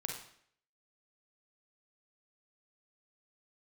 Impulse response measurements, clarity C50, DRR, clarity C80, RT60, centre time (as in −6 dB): 4.0 dB, 1.0 dB, 8.0 dB, 0.65 s, 34 ms